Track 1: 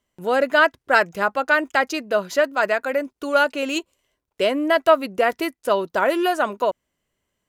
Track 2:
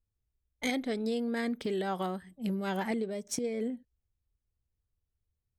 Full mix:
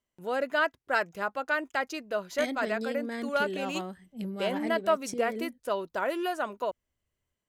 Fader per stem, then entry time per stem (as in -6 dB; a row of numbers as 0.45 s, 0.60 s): -10.5 dB, -3.0 dB; 0.00 s, 1.75 s